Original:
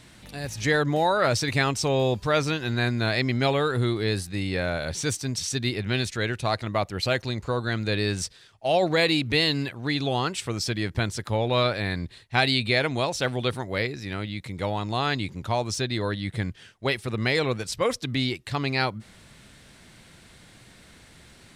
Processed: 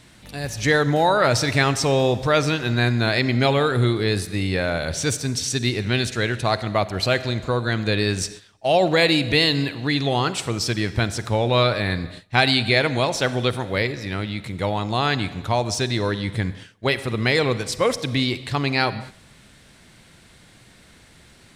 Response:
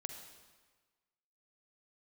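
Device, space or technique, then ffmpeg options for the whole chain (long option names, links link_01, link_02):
keyed gated reverb: -filter_complex "[0:a]asplit=3[link_01][link_02][link_03];[1:a]atrim=start_sample=2205[link_04];[link_02][link_04]afir=irnorm=-1:irlink=0[link_05];[link_03]apad=whole_len=950684[link_06];[link_05][link_06]sidechaingate=range=-17dB:threshold=-44dB:ratio=16:detection=peak,volume=-0.5dB[link_07];[link_01][link_07]amix=inputs=2:normalize=0"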